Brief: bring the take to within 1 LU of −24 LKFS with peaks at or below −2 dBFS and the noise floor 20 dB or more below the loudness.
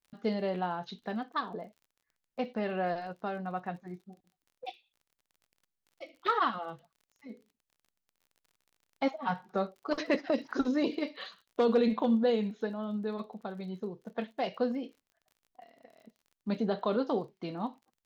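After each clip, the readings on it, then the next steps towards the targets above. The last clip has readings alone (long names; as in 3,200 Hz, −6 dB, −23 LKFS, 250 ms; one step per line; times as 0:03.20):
crackle rate 36 per second; integrated loudness −33.0 LKFS; sample peak −17.0 dBFS; target loudness −24.0 LKFS
→ click removal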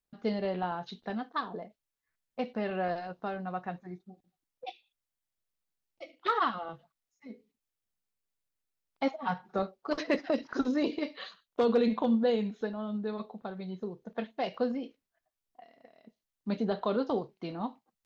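crackle rate 0.11 per second; integrated loudness −33.0 LKFS; sample peak −17.0 dBFS; target loudness −24.0 LKFS
→ level +9 dB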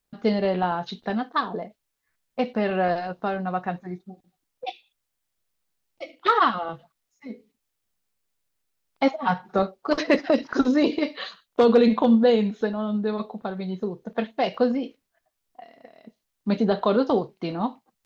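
integrated loudness −24.0 LKFS; sample peak −8.0 dBFS; background noise floor −80 dBFS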